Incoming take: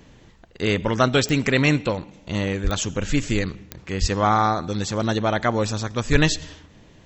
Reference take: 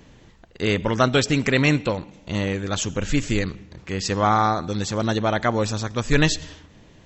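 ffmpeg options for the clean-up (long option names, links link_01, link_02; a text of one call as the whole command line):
ffmpeg -i in.wav -filter_complex "[0:a]adeclick=threshold=4,asplit=3[link_01][link_02][link_03];[link_01]afade=type=out:start_time=2.63:duration=0.02[link_04];[link_02]highpass=frequency=140:width=0.5412,highpass=frequency=140:width=1.3066,afade=type=in:start_time=2.63:duration=0.02,afade=type=out:start_time=2.75:duration=0.02[link_05];[link_03]afade=type=in:start_time=2.75:duration=0.02[link_06];[link_04][link_05][link_06]amix=inputs=3:normalize=0,asplit=3[link_07][link_08][link_09];[link_07]afade=type=out:start_time=4:duration=0.02[link_10];[link_08]highpass=frequency=140:width=0.5412,highpass=frequency=140:width=1.3066,afade=type=in:start_time=4:duration=0.02,afade=type=out:start_time=4.12:duration=0.02[link_11];[link_09]afade=type=in:start_time=4.12:duration=0.02[link_12];[link_10][link_11][link_12]amix=inputs=3:normalize=0,asplit=3[link_13][link_14][link_15];[link_13]afade=type=out:start_time=6.11:duration=0.02[link_16];[link_14]highpass=frequency=140:width=0.5412,highpass=frequency=140:width=1.3066,afade=type=in:start_time=6.11:duration=0.02,afade=type=out:start_time=6.23:duration=0.02[link_17];[link_15]afade=type=in:start_time=6.23:duration=0.02[link_18];[link_16][link_17][link_18]amix=inputs=3:normalize=0" out.wav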